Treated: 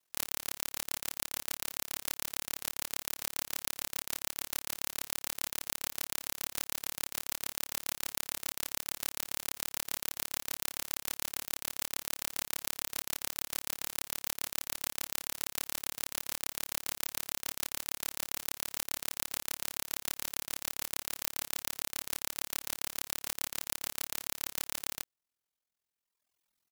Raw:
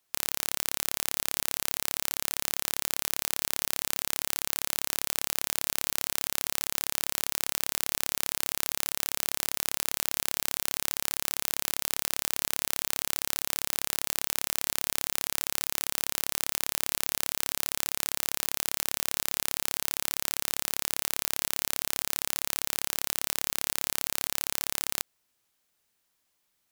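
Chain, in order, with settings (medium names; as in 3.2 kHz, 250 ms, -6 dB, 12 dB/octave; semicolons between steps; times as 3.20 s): doubling 25 ms -8 dB; reverb removal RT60 1.6 s; ring modulator 21 Hz; trim -1.5 dB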